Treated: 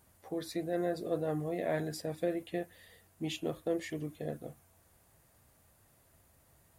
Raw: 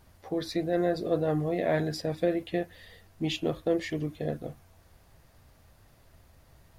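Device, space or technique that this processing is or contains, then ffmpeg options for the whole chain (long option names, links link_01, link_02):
budget condenser microphone: -af "highpass=frequency=100:poles=1,highshelf=frequency=6500:width_type=q:width=1.5:gain=7,volume=-6dB"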